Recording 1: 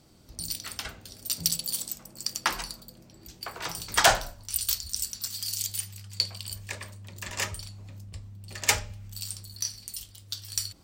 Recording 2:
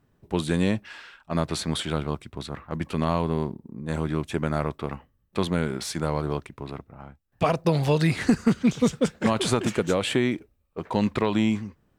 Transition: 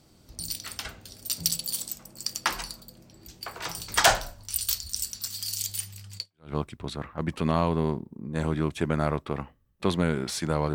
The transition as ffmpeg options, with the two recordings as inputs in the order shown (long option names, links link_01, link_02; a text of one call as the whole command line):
ffmpeg -i cue0.wav -i cue1.wav -filter_complex "[0:a]apad=whole_dur=10.74,atrim=end=10.74,atrim=end=6.53,asetpts=PTS-STARTPTS[link_01];[1:a]atrim=start=1.7:end=6.27,asetpts=PTS-STARTPTS[link_02];[link_01][link_02]acrossfade=duration=0.36:curve1=exp:curve2=exp" out.wav